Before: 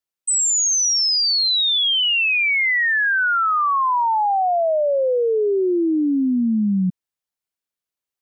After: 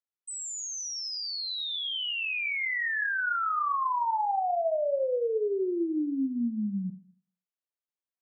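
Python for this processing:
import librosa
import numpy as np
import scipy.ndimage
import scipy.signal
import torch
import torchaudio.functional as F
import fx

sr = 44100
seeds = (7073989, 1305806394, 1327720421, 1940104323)

y = fx.highpass(x, sr, hz=260.0, slope=6)
y = fx.high_shelf(y, sr, hz=3000.0, db=-12.0)
y = fx.rev_schroeder(y, sr, rt60_s=0.5, comb_ms=26, drr_db=8.0)
y = F.gain(torch.from_numpy(y), -8.5).numpy()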